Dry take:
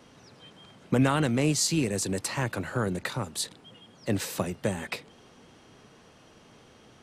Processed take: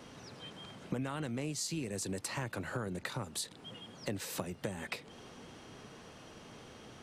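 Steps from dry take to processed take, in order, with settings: compressor 5:1, threshold -39 dBFS, peak gain reduction 18.5 dB; gain +2.5 dB

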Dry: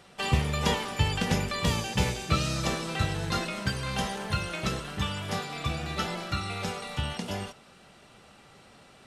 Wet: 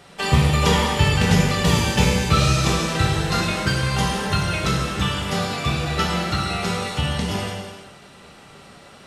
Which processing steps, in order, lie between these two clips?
non-linear reverb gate 0.5 s falling, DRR -1.5 dB; gain +5.5 dB

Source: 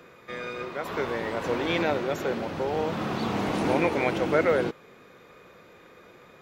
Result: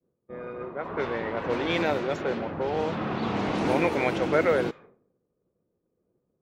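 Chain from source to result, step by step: low-pass opened by the level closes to 310 Hz, open at -21 dBFS; expander -45 dBFS

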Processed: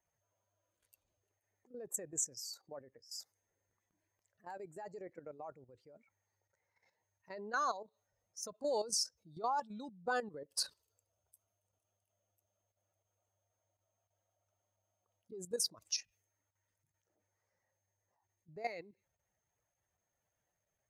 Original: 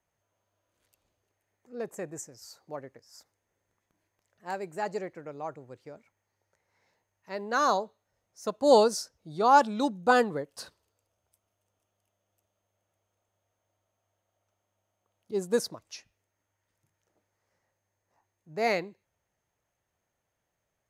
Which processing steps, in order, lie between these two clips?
spectral contrast raised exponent 1.6; compressor 2:1, threshold -35 dBFS, peak gain reduction 11 dB; pre-emphasis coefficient 0.9; level quantiser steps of 12 dB; mismatched tape noise reduction decoder only; gain +14.5 dB

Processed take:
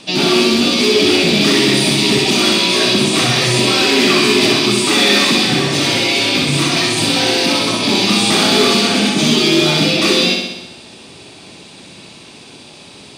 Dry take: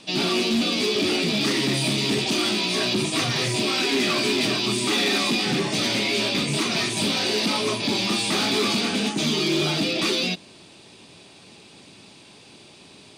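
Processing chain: 5.46–7.74 notch comb 210 Hz; flutter echo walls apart 10.9 m, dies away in 0.95 s; gain +8 dB

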